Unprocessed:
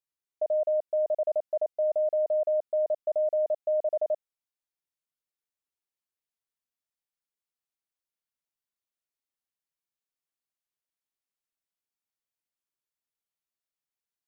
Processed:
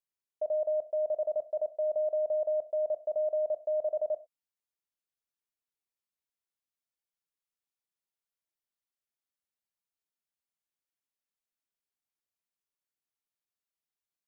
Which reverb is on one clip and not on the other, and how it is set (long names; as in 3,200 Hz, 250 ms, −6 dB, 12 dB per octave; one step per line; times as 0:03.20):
reverb whose tail is shaped and stops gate 130 ms falling, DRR 11.5 dB
level −4 dB